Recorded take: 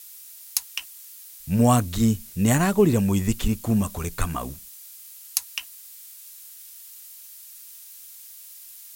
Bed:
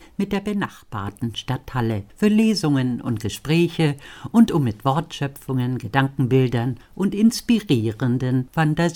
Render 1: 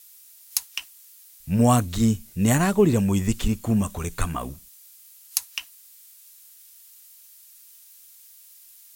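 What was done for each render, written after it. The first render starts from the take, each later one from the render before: noise print and reduce 6 dB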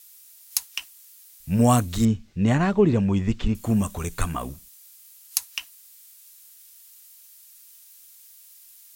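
2.05–3.55 air absorption 170 m; 4.48–5.38 companded quantiser 8-bit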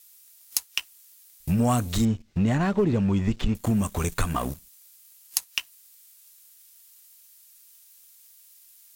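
sample leveller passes 2; compressor 3:1, threshold -23 dBFS, peak gain reduction 11.5 dB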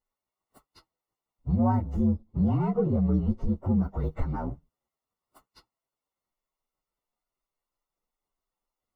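inharmonic rescaling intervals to 121%; polynomial smoothing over 65 samples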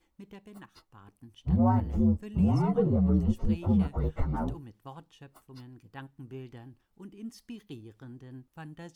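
add bed -25.5 dB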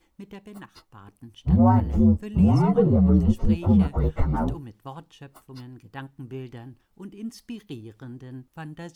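gain +6.5 dB

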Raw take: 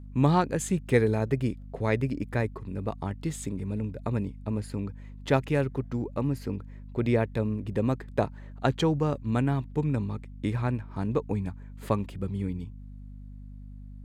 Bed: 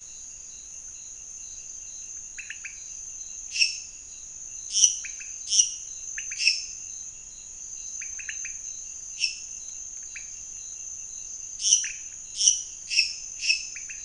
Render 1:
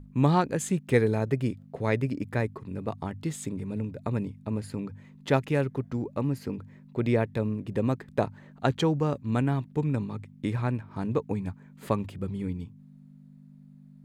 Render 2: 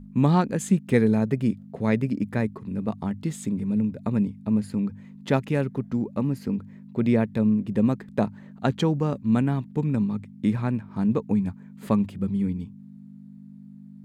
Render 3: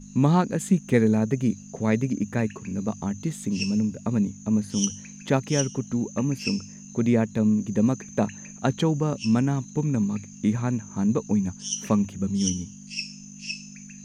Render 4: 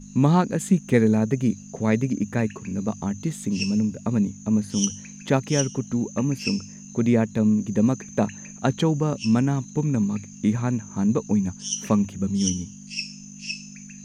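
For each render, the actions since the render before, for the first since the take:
notches 50/100 Hz
bell 210 Hz +11.5 dB 0.46 oct
add bed -10 dB
gain +1.5 dB

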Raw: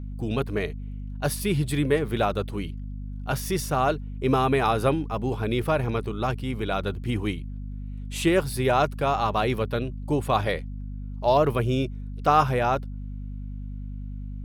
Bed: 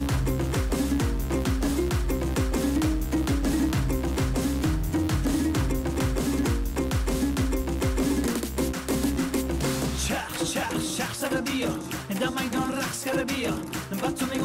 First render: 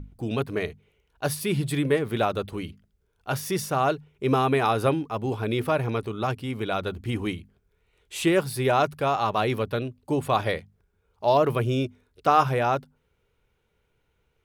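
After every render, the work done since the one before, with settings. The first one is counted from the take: notches 50/100/150/200/250 Hz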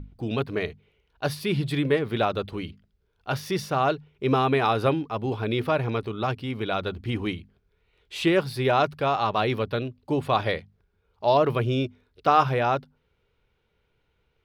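resonant high shelf 5900 Hz -8.5 dB, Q 1.5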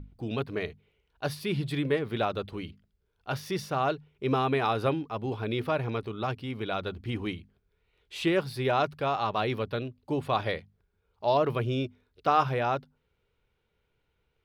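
gain -4.5 dB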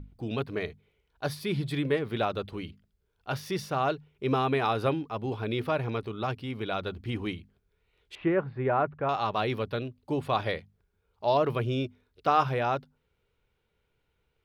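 0.59–1.74 notch 2800 Hz; 8.15–9.09 LPF 1900 Hz 24 dB/oct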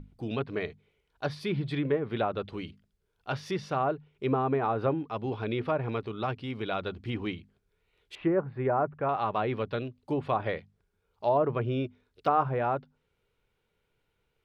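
treble ducked by the level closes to 1200 Hz, closed at -22.5 dBFS; bell 61 Hz -6.5 dB 1 oct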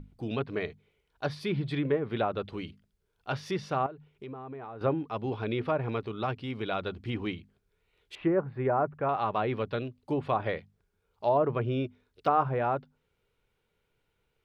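3.86–4.81 compressor 4:1, threshold -41 dBFS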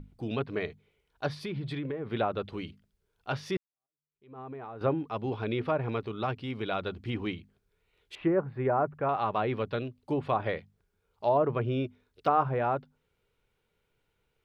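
1.28–2.1 compressor, threshold -31 dBFS; 3.57–4.39 fade in exponential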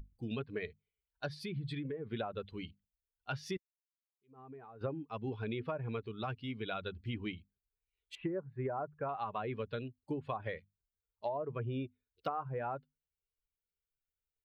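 per-bin expansion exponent 1.5; compressor 10:1, threshold -34 dBFS, peak gain reduction 13.5 dB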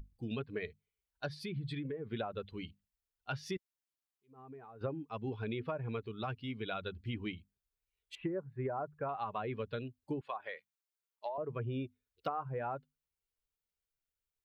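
10.21–11.38 HPF 660 Hz

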